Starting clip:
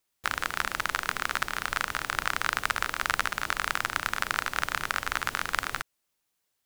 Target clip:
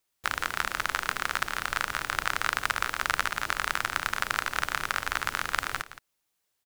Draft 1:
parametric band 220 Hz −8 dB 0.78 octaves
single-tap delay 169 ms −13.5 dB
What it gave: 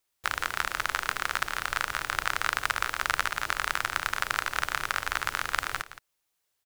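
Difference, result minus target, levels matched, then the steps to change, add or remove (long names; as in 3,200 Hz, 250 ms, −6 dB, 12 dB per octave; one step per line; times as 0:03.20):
250 Hz band −3.0 dB
change: parametric band 220 Hz −2 dB 0.78 octaves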